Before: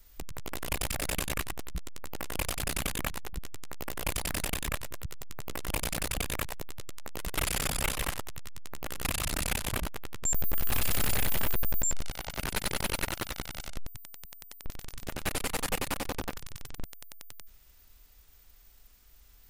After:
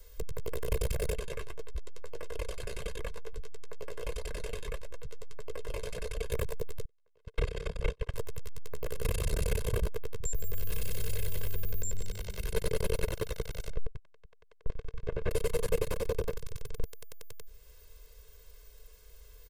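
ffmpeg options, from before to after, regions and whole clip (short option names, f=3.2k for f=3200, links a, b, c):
-filter_complex "[0:a]asettb=1/sr,asplit=3[a][b][c];[a]atrim=end=1.134[d];[b]atrim=start=1.13:end=6.32,asetpts=PTS-STARTPTS,afade=t=in:d=0.004:c=qsin,afade=t=out:st=5.186:d=0.004:c=qsin,flanger=delay=2.4:depth=8:regen=-42:speed=1.6:shape=triangular,adynamicsmooth=sensitivity=3:basefreq=8k,equalizer=f=120:t=o:w=2.7:g=-7[e];[c]atrim=start=6.316[f];[d][e]acrossfade=d=0.004:c1=hsin:c2=qsin[g];[g][f]acrossfade=d=0.004:c1=qsin:c2=hsin,asettb=1/sr,asplit=3[h][i][j];[h]atrim=end=6.854[k];[i]atrim=start=6.85:end=8.14,asetpts=PTS-STARTPTS,afade=t=in:d=0.004:c=qsin,afade=t=out:st=1.286:d=0.004:c=qsin,agate=range=-38dB:threshold=-30dB:ratio=16:release=100:detection=peak,lowpass=4.2k[l];[j]atrim=start=8.136[m];[k][l]acrossfade=d=0.004:c1=hsin:c2=qsin[n];[n][m]acrossfade=d=0.004:c1=qsin:c2=hsin,asettb=1/sr,asplit=3[o][p][q];[o]atrim=end=10.204[r];[p]atrim=start=10.2:end=12.52,asetpts=PTS-STARTPTS,afade=t=in:d=0.004:c=qsin,afade=t=out:st=2.316:d=0.004:c=qsin,acrossover=split=89|1700|4900[s][t][u][v];[s]acompressor=threshold=-33dB:ratio=3[w];[t]acompressor=threshold=-48dB:ratio=3[x];[u]acompressor=threshold=-39dB:ratio=3[y];[v]acompressor=threshold=-33dB:ratio=3[z];[w][x][y][z]amix=inputs=4:normalize=0,asoftclip=type=hard:threshold=-24dB,asplit=5[aa][ab][ac][ad][ae];[ab]adelay=146,afreqshift=96,volume=-17.5dB[af];[ac]adelay=292,afreqshift=192,volume=-24.1dB[ag];[ad]adelay=438,afreqshift=288,volume=-30.6dB[ah];[ae]adelay=584,afreqshift=384,volume=-37.2dB[ai];[aa][af][ag][ah][ai]amix=inputs=5:normalize=0,atrim=end_sample=102312[aj];[q]atrim=start=12.516[ak];[r][aj]acrossfade=d=0.004:c1=hsin:c2=qsin[al];[al][ak]acrossfade=d=0.004:c1=qsin:c2=hsin,asettb=1/sr,asplit=3[am][an][ao];[am]atrim=end=13.704[ap];[an]atrim=start=13.7:end=15.31,asetpts=PTS-STARTPTS,afade=t=in:d=0.004:c=qsin,afade=t=out:st=1.606:d=0.004:c=qsin,agate=range=-14dB:threshold=-43dB:ratio=16:release=100:detection=peak,lowpass=2.2k[aq];[ao]atrim=start=15.306[ar];[ap][aq]acrossfade=d=0.004:c1=hsin:c2=qsin[as];[as][ar]acrossfade=d=0.004:c1=qsin:c2=hsin,aecho=1:1:1.9:0.97,acrossover=split=380[at][au];[au]acompressor=threshold=-59dB:ratio=1.5[av];[at][av]amix=inputs=2:normalize=0,equalizer=f=450:w=3.5:g=14"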